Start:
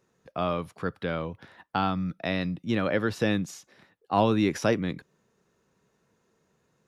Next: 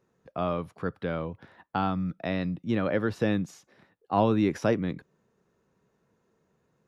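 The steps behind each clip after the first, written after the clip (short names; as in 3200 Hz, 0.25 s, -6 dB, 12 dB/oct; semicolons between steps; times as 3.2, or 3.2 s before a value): high shelf 2100 Hz -8.5 dB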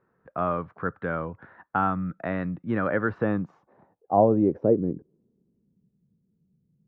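low-pass sweep 1500 Hz -> 180 Hz, 3.05–5.98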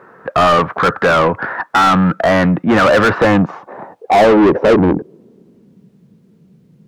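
overdrive pedal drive 35 dB, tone 1900 Hz, clips at -6 dBFS; gain +4 dB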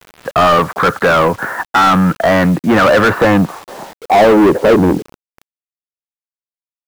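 bit-crush 6-bit; gain +1 dB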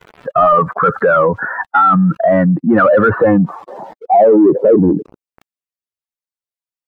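spectral contrast raised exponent 2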